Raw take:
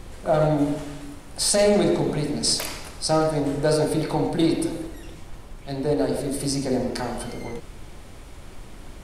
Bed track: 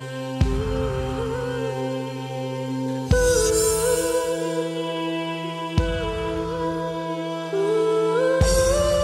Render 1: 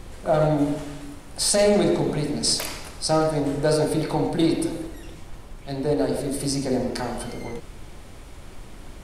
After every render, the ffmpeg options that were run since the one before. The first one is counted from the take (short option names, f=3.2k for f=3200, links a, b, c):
-af anull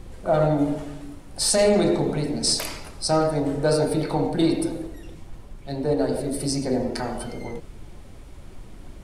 -af "afftdn=nr=6:nf=-42"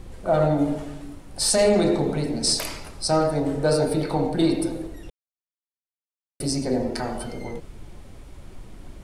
-filter_complex "[0:a]asplit=3[a][b][c];[a]atrim=end=5.1,asetpts=PTS-STARTPTS,afade=t=out:st=5.096:d=0.004:c=hsin[d];[b]atrim=start=5.1:end=6.4,asetpts=PTS-STARTPTS,volume=0[e];[c]atrim=start=6.4,asetpts=PTS-STARTPTS,afade=t=in:d=0.004:c=hsin[f];[d][e][f]concat=n=3:v=0:a=1"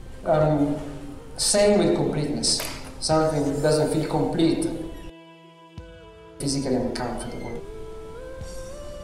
-filter_complex "[1:a]volume=-19.5dB[a];[0:a][a]amix=inputs=2:normalize=0"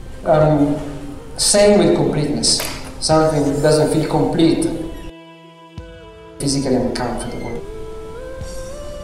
-af "volume=7dB"